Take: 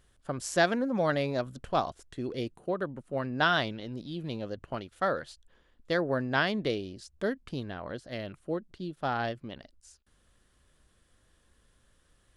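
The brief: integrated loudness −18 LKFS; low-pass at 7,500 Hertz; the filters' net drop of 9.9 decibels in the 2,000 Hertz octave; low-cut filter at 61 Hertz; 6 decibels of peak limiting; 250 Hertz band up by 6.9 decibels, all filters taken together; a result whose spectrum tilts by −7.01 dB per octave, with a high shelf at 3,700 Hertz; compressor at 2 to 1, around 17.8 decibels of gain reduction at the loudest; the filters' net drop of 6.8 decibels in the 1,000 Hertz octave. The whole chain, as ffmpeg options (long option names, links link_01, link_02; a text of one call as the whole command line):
ffmpeg -i in.wav -af "highpass=61,lowpass=7500,equalizer=frequency=250:width_type=o:gain=9,equalizer=frequency=1000:width_type=o:gain=-8.5,equalizer=frequency=2000:width_type=o:gain=-8,highshelf=frequency=3700:gain=-9,acompressor=threshold=-55dB:ratio=2,volume=29.5dB,alimiter=limit=-7.5dB:level=0:latency=1" out.wav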